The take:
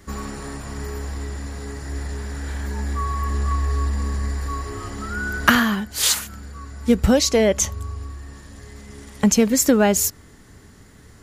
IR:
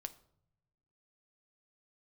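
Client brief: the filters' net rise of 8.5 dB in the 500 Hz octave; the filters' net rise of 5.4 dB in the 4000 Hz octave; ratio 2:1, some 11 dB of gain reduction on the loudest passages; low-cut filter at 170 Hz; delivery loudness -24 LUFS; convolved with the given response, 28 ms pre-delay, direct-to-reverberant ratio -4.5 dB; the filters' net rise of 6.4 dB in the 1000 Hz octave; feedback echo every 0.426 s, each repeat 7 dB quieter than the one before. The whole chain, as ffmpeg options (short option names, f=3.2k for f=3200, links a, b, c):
-filter_complex "[0:a]highpass=170,equalizer=f=500:t=o:g=8.5,equalizer=f=1k:t=o:g=5.5,equalizer=f=4k:t=o:g=6.5,acompressor=threshold=-25dB:ratio=2,aecho=1:1:426|852|1278|1704|2130:0.447|0.201|0.0905|0.0407|0.0183,asplit=2[a][b];[1:a]atrim=start_sample=2205,adelay=28[c];[b][c]afir=irnorm=-1:irlink=0,volume=8dB[d];[a][d]amix=inputs=2:normalize=0,volume=-4.5dB"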